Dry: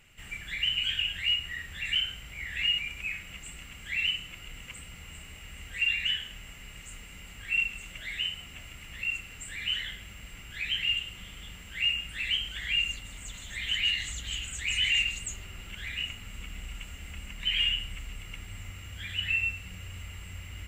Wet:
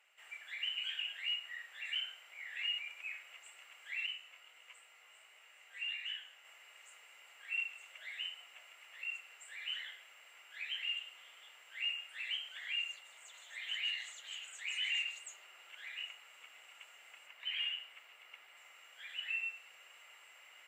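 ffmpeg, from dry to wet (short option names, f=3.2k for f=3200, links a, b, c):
-filter_complex "[0:a]asettb=1/sr,asplit=3[a][b][c];[a]atrim=end=4.064[d];[b]atrim=start=4.06:end=6.45,asetpts=PTS-STARTPTS,afade=t=in:d=0.004:c=qsin,afade=t=out:st=2.386:d=0.004:c=qsin,flanger=delay=16:depth=5.5:speed=1.5[e];[c]atrim=start=6.446[f];[d][e]acrossfade=d=0.004:c1=hsin:c2=qsin[g];[g][f]acrossfade=d=0.004:c1=qsin:c2=hsin,asettb=1/sr,asplit=3[h][i][j];[h]atrim=end=17.274[k];[i]atrim=start=17.27:end=18.57,asetpts=PTS-STARTPTS,afade=t=in:d=0.004:c=qsin,afade=t=out:st=1.296:d=0.004:c=qsin,equalizer=f=7.9k:t=o:w=1:g=-6.5[l];[j]atrim=start=18.566[m];[k][l]acrossfade=d=0.004:c1=hsin:c2=qsin[n];[n][m]acrossfade=d=0.004:c1=qsin:c2=hsin,highpass=f=610:w=0.5412,highpass=f=610:w=1.3066,highshelf=f=2.4k:g=-9,volume=-5dB"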